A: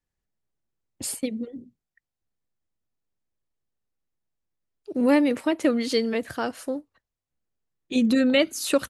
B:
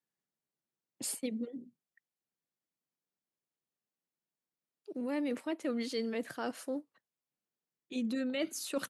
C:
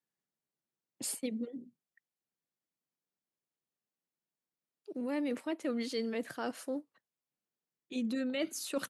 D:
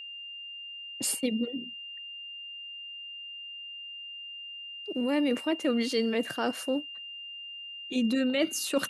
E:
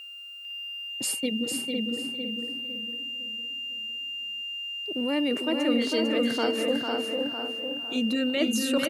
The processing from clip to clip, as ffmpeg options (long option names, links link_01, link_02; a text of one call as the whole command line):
ffmpeg -i in.wav -af "highpass=frequency=150:width=0.5412,highpass=frequency=150:width=1.3066,areverse,acompressor=threshold=-27dB:ratio=6,areverse,volume=-5dB" out.wav
ffmpeg -i in.wav -af anull out.wav
ffmpeg -i in.wav -af "aeval=exprs='val(0)+0.00447*sin(2*PI*2800*n/s)':channel_layout=same,volume=7.5dB" out.wav
ffmpeg -i in.wav -filter_complex "[0:a]asplit=2[link_01][link_02];[link_02]aecho=0:1:450|900|1350:0.562|0.107|0.0203[link_03];[link_01][link_03]amix=inputs=2:normalize=0,acrusher=bits=9:mix=0:aa=0.000001,asplit=2[link_04][link_05];[link_05]adelay=505,lowpass=frequency=1800:poles=1,volume=-3dB,asplit=2[link_06][link_07];[link_07]adelay=505,lowpass=frequency=1800:poles=1,volume=0.41,asplit=2[link_08][link_09];[link_09]adelay=505,lowpass=frequency=1800:poles=1,volume=0.41,asplit=2[link_10][link_11];[link_11]adelay=505,lowpass=frequency=1800:poles=1,volume=0.41,asplit=2[link_12][link_13];[link_13]adelay=505,lowpass=frequency=1800:poles=1,volume=0.41[link_14];[link_06][link_08][link_10][link_12][link_14]amix=inputs=5:normalize=0[link_15];[link_04][link_15]amix=inputs=2:normalize=0" out.wav